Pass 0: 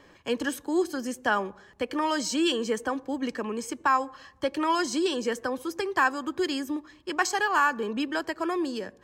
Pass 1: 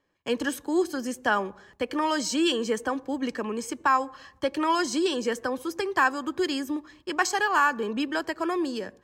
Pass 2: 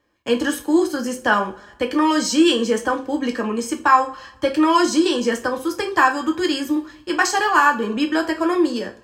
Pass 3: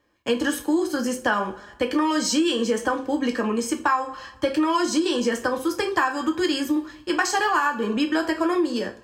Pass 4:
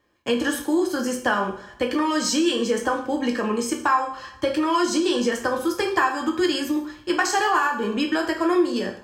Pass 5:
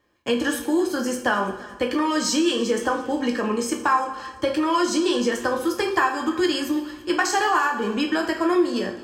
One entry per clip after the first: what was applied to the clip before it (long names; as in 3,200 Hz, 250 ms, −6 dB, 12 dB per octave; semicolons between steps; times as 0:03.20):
noise gate with hold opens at −42 dBFS; level +1 dB
coupled-rooms reverb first 0.28 s, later 1.6 s, from −27 dB, DRR 2.5 dB; level +5 dB
downward compressor 6 to 1, threshold −18 dBFS, peak gain reduction 10 dB
reverb whose tail is shaped and stops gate 200 ms falling, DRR 7 dB
echo machine with several playback heads 113 ms, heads second and third, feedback 44%, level −21.5 dB